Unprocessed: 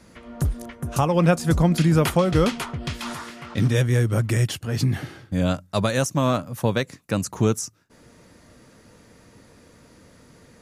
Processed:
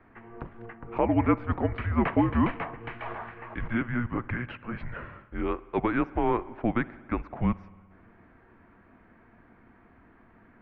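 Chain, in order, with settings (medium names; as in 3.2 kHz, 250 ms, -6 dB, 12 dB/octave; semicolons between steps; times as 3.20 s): mistuned SSB -240 Hz 300–2500 Hz; spring tank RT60 1.7 s, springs 58 ms, chirp 50 ms, DRR 18.5 dB; trim -1.5 dB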